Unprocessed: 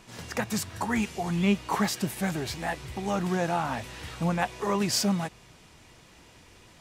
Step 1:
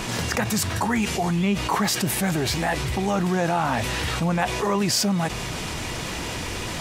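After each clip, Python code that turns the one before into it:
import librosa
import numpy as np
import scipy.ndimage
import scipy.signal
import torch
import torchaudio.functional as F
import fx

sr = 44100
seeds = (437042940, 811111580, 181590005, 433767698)

y = fx.env_flatten(x, sr, amount_pct=70)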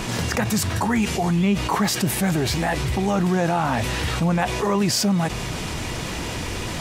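y = fx.low_shelf(x, sr, hz=430.0, db=3.5)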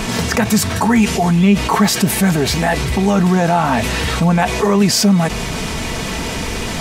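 y = x + 0.41 * np.pad(x, (int(4.5 * sr / 1000.0), 0))[:len(x)]
y = F.gain(torch.from_numpy(y), 6.0).numpy()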